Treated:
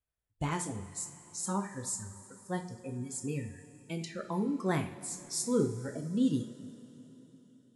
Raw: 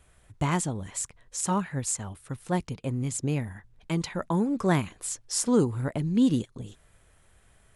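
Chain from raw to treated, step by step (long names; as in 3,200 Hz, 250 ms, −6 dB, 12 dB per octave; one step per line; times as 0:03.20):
pitch vibrato 4.9 Hz 28 cents
noise reduction from a noise print of the clip's start 26 dB
coupled-rooms reverb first 0.4 s, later 4 s, from −18 dB, DRR 3.5 dB
level −7.5 dB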